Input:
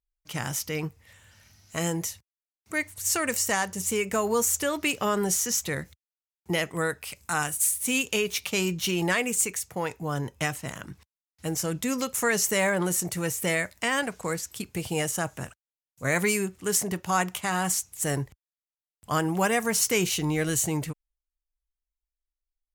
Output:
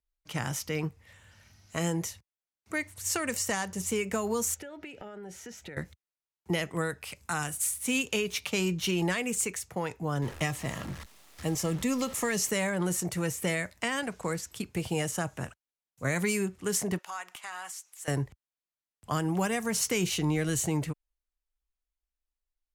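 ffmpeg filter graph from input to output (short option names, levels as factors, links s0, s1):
-filter_complex "[0:a]asettb=1/sr,asplit=3[s0][s1][s2];[s0]atrim=end=4.544[s3];[s1]atrim=start=4.54:end=5.77,asetpts=PTS-STARTPTS,afade=t=in:d=0.004:c=qsin,afade=t=out:st=1.226:d=0.004:c=qsin,bass=f=250:g=-4,treble=f=4000:g=-14,acompressor=threshold=0.0126:ratio=16:attack=3.2:release=140:knee=1:detection=peak,asuperstop=centerf=1100:order=4:qfactor=3.5[s4];[s2]atrim=start=5.766[s5];[s3][s4]acrossfade=d=0.004:c1=hsin:c2=qsin[s6];[s6][s5]acrossfade=d=0.004:c1=qsin:c2=hsin,asettb=1/sr,asplit=3[s7][s8][s9];[s7]atrim=end=10.224[s10];[s8]atrim=start=10.22:end=12.5,asetpts=PTS-STARTPTS,afade=t=in:d=0.004:c=qsin,afade=t=out:st=2.276:d=0.004:c=qsin,aeval=exprs='val(0)+0.5*0.0119*sgn(val(0))':c=same,asuperstop=centerf=1500:order=12:qfactor=7.5,acrusher=bits=8:dc=4:mix=0:aa=0.000001[s11];[s9]atrim=start=12.496[s12];[s10][s11]acrossfade=d=0.004:c1=hsin:c2=qsin[s13];[s13][s12]acrossfade=d=0.004:c1=qsin:c2=hsin,asettb=1/sr,asplit=3[s14][s15][s16];[s14]atrim=end=16.984[s17];[s15]atrim=start=16.98:end=18.08,asetpts=PTS-STARTPTS,afade=t=in:d=0.004:c=qsin,afade=t=out:st=1.096:d=0.004:c=qsin,highpass=940,acompressor=threshold=0.00891:ratio=2:attack=3.2:release=140:knee=1:detection=peak,aeval=exprs='(mod(15.8*val(0)+1,2)-1)/15.8':c=same[s18];[s16]atrim=start=18.076[s19];[s17][s18]acrossfade=d=0.004:c1=hsin:c2=qsin[s20];[s20][s19]acrossfade=d=0.004:c1=qsin:c2=hsin,aemphasis=mode=reproduction:type=50kf,acrossover=split=240|3000[s21][s22][s23];[s22]acompressor=threshold=0.0355:ratio=6[s24];[s21][s24][s23]amix=inputs=3:normalize=0,equalizer=f=12000:w=0.53:g=5"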